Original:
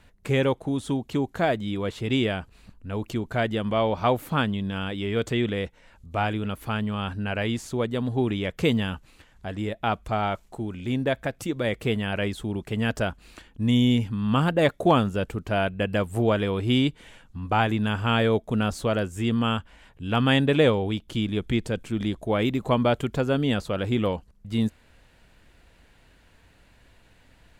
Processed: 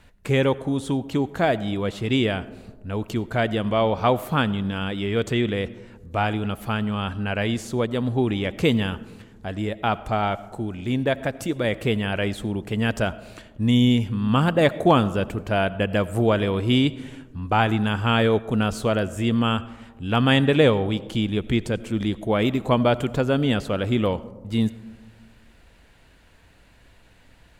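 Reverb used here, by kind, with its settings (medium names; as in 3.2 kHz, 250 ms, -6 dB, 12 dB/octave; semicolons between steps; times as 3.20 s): algorithmic reverb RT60 1.4 s, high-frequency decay 0.25×, pre-delay 45 ms, DRR 17.5 dB; trim +2.5 dB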